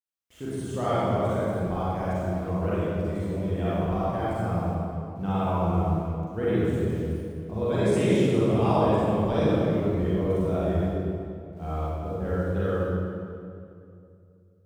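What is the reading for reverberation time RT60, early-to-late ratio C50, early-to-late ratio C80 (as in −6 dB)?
2.5 s, −6.5 dB, −3.5 dB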